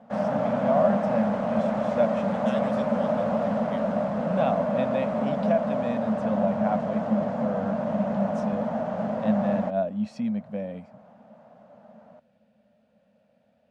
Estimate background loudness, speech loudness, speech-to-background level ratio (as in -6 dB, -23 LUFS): -27.0 LUFS, -30.0 LUFS, -3.0 dB